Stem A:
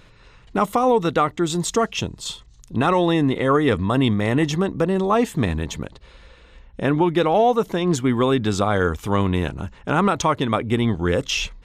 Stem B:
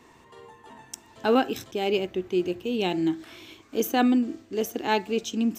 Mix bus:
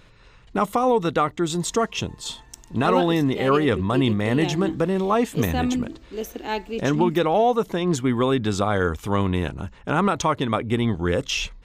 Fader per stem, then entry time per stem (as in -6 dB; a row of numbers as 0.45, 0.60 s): -2.0, -3.0 dB; 0.00, 1.60 s